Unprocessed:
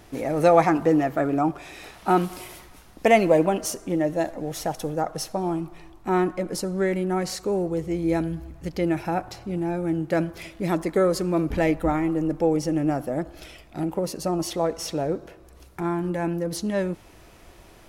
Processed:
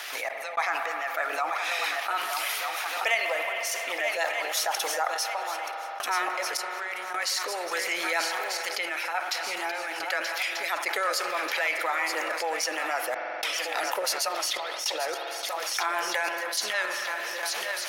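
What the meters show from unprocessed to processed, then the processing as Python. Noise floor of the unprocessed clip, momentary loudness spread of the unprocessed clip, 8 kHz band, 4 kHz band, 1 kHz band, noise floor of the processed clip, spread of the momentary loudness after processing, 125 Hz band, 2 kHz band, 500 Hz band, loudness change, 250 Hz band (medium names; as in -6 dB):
-50 dBFS, 12 LU, +5.0 dB, +9.5 dB, -1.5 dB, -35 dBFS, 4 LU, under -40 dB, +8.0 dB, -10.0 dB, -3.5 dB, -23.0 dB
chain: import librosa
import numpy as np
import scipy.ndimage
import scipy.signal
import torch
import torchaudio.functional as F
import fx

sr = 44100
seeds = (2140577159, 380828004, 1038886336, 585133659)

p1 = scipy.signal.sosfilt(scipy.signal.bessel(4, 1300.0, 'highpass', norm='mag', fs=sr, output='sos'), x)
p2 = fx.peak_eq(p1, sr, hz=9300.0, db=-12.5, octaves=2.1)
p3 = fx.notch(p2, sr, hz=7700.0, q=15.0)
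p4 = fx.hpss(p3, sr, part='harmonic', gain_db=-5)
p5 = fx.high_shelf(p4, sr, hz=2400.0, db=8.0)
p6 = fx.rider(p5, sr, range_db=4, speed_s=0.5)
p7 = p6 + fx.echo_swing(p6, sr, ms=1238, ratio=3, feedback_pct=42, wet_db=-12.0, dry=0)
p8 = fx.rotary(p7, sr, hz=6.3)
p9 = fx.tremolo_random(p8, sr, seeds[0], hz=3.5, depth_pct=100)
p10 = fx.rev_spring(p9, sr, rt60_s=2.3, pass_ms=(44,), chirp_ms=45, drr_db=13.5)
p11 = fx.env_flatten(p10, sr, amount_pct=70)
y = p11 * librosa.db_to_amplitude(3.5)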